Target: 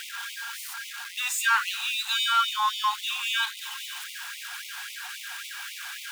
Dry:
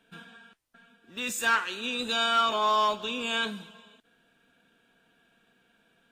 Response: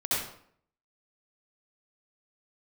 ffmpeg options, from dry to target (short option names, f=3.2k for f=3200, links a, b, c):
-af "aeval=exprs='val(0)+0.5*0.0282*sgn(val(0))':c=same,afftfilt=real='re*gte(b*sr/1024,710*pow(2000/710,0.5+0.5*sin(2*PI*3.7*pts/sr)))':imag='im*gte(b*sr/1024,710*pow(2000/710,0.5+0.5*sin(2*PI*3.7*pts/sr)))':win_size=1024:overlap=0.75,volume=1dB"